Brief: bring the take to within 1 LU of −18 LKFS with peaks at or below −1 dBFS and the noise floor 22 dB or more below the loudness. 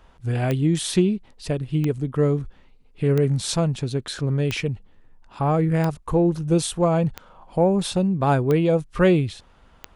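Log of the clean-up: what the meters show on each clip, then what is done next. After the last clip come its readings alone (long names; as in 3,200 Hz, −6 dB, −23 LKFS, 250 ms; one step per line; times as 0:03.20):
number of clicks 8; integrated loudness −22.5 LKFS; sample peak −7.0 dBFS; target loudness −18.0 LKFS
→ click removal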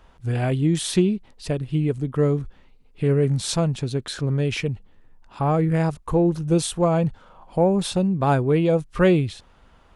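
number of clicks 0; integrated loudness −22.5 LKFS; sample peak −7.0 dBFS; target loudness −18.0 LKFS
→ level +4.5 dB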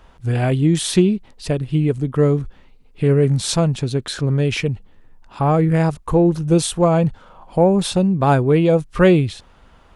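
integrated loudness −18.0 LKFS; sample peak −2.5 dBFS; background noise floor −49 dBFS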